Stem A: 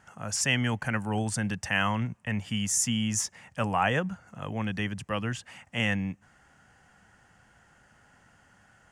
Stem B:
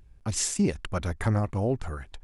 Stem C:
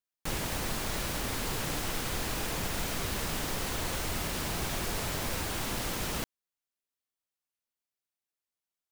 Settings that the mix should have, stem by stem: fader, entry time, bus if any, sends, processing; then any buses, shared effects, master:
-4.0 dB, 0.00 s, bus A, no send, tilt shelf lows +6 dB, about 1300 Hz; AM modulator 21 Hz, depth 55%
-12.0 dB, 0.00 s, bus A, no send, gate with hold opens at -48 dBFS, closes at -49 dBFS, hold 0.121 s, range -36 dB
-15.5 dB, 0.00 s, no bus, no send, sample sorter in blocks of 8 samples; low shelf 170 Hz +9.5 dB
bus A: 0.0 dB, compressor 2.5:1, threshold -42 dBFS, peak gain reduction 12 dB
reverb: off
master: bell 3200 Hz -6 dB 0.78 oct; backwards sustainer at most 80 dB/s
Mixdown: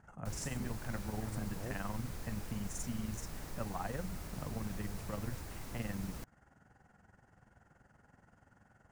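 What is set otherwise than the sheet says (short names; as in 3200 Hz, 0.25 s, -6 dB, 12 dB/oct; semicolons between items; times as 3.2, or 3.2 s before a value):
stem C: missing sample sorter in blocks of 8 samples; master: missing backwards sustainer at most 80 dB/s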